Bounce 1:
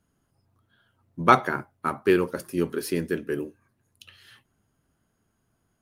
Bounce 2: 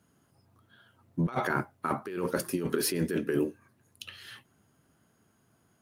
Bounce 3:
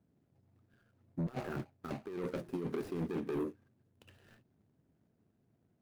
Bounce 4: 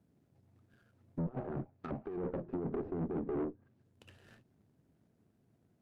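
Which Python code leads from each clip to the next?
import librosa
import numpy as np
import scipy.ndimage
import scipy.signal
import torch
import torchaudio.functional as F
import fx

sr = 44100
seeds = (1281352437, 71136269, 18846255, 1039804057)

y1 = scipy.signal.sosfilt(scipy.signal.butter(2, 100.0, 'highpass', fs=sr, output='sos'), x)
y1 = fx.over_compress(y1, sr, threshold_db=-30.0, ratio=-1.0)
y2 = scipy.signal.medfilt(y1, 41)
y2 = 10.0 ** (-25.5 / 20.0) * np.tanh(y2 / 10.0 ** (-25.5 / 20.0))
y2 = y2 * 10.0 ** (-4.0 / 20.0)
y3 = fx.env_lowpass_down(y2, sr, base_hz=770.0, full_db=-38.0)
y3 = fx.tube_stage(y3, sr, drive_db=34.0, bias=0.45)
y3 = y3 * 10.0 ** (4.0 / 20.0)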